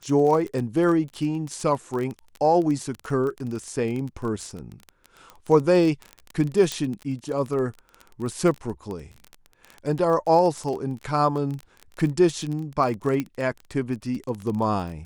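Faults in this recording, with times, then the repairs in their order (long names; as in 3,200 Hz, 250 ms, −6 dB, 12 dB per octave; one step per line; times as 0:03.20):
surface crackle 20 per second −28 dBFS
0:06.72: click −12 dBFS
0:13.20: click −14 dBFS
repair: click removal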